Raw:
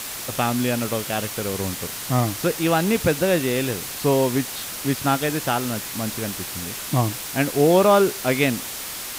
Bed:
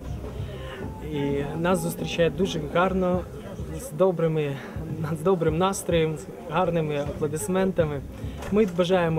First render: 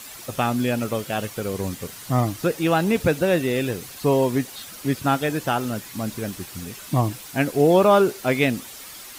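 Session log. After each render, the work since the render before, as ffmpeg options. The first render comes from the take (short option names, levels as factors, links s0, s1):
-af "afftdn=nr=10:nf=-32"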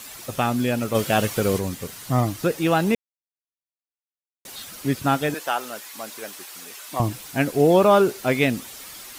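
-filter_complex "[0:a]asplit=3[s0][s1][s2];[s0]afade=t=out:st=0.94:d=0.02[s3];[s1]acontrast=59,afade=t=in:st=0.94:d=0.02,afade=t=out:st=1.58:d=0.02[s4];[s2]afade=t=in:st=1.58:d=0.02[s5];[s3][s4][s5]amix=inputs=3:normalize=0,asettb=1/sr,asplit=3[s6][s7][s8];[s6]atrim=end=5.344[s9];[s7]atrim=start=5.34:end=7,asetpts=PTS-STARTPTS,afade=t=in:d=0.004:c=qsin,afade=t=out:st=1.656:d=0.004:c=qsin,highpass=570[s10];[s8]atrim=start=6.996[s11];[s9][s10]acrossfade=d=0.004:c1=hsin:c2=qsin[s12];[s12][s11]acrossfade=d=0.004:c1=qsin:c2=hsin,asplit=3[s13][s14][s15];[s13]atrim=end=2.95,asetpts=PTS-STARTPTS,afade=t=out:st=2.946:d=0.004:c=hsin[s16];[s14]atrim=start=2.95:end=4.45,asetpts=PTS-STARTPTS,volume=0[s17];[s15]atrim=start=4.45,asetpts=PTS-STARTPTS,afade=t=in:d=0.004:c=hsin[s18];[s16][s17][s18]concat=n=3:v=0:a=1"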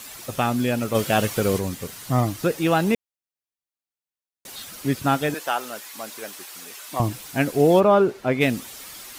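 -filter_complex "[0:a]asplit=3[s0][s1][s2];[s0]afade=t=out:st=7.79:d=0.02[s3];[s1]lowpass=f=1600:p=1,afade=t=in:st=7.79:d=0.02,afade=t=out:st=8.4:d=0.02[s4];[s2]afade=t=in:st=8.4:d=0.02[s5];[s3][s4][s5]amix=inputs=3:normalize=0"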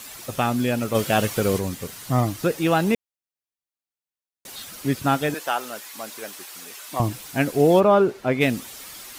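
-af anull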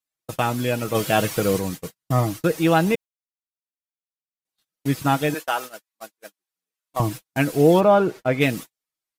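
-af "agate=range=0.00282:threshold=0.0282:ratio=16:detection=peak,aecho=1:1:6.3:0.43"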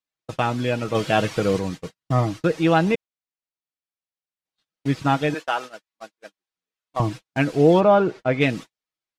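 -af "lowpass=5100"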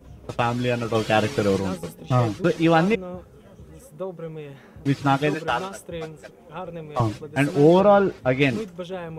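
-filter_complex "[1:a]volume=0.282[s0];[0:a][s0]amix=inputs=2:normalize=0"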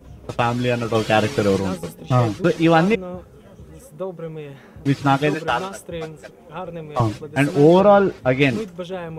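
-af "volume=1.41,alimiter=limit=0.708:level=0:latency=1"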